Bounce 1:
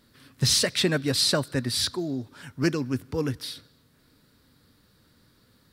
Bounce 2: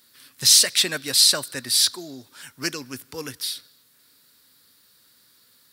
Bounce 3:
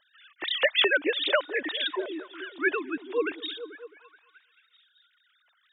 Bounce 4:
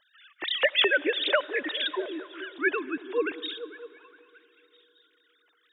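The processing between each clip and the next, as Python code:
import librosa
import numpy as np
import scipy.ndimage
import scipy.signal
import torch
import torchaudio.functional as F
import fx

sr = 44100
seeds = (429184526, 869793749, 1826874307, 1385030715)

y1 = fx.tilt_eq(x, sr, slope=4.0)
y1 = F.gain(torch.from_numpy(y1), -1.5).numpy()
y2 = fx.sine_speech(y1, sr)
y2 = fx.echo_stepped(y2, sr, ms=217, hz=240.0, octaves=0.7, feedback_pct=70, wet_db=-9.5)
y2 = F.gain(torch.from_numpy(y2), -6.0).numpy()
y3 = fx.rev_freeverb(y2, sr, rt60_s=4.1, hf_ratio=0.45, predelay_ms=40, drr_db=19.5)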